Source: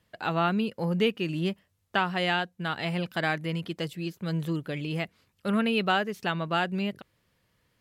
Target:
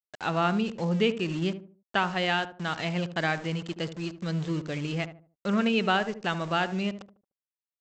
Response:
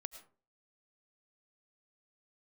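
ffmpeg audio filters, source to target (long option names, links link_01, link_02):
-filter_complex "[0:a]aresample=16000,aeval=exprs='val(0)*gte(abs(val(0)),0.0112)':channel_layout=same,aresample=44100,asplit=2[link_01][link_02];[link_02]adelay=75,lowpass=frequency=890:poles=1,volume=-10dB,asplit=2[link_03][link_04];[link_04]adelay=75,lowpass=frequency=890:poles=1,volume=0.36,asplit=2[link_05][link_06];[link_06]adelay=75,lowpass=frequency=890:poles=1,volume=0.36,asplit=2[link_07][link_08];[link_08]adelay=75,lowpass=frequency=890:poles=1,volume=0.36[link_09];[link_01][link_03][link_05][link_07][link_09]amix=inputs=5:normalize=0"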